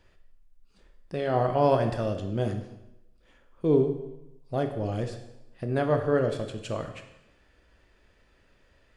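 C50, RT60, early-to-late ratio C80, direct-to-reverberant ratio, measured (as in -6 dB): 8.5 dB, 0.90 s, 11.0 dB, 5.5 dB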